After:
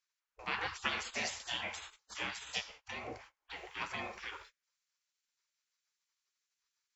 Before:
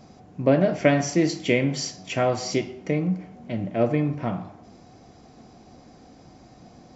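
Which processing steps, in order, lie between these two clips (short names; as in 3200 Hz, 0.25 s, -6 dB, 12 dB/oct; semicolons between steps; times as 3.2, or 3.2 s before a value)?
gate -37 dBFS, range -27 dB; spectral gate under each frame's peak -25 dB weak; high shelf 4900 Hz +2 dB, from 3.56 s +8 dB; gain +1.5 dB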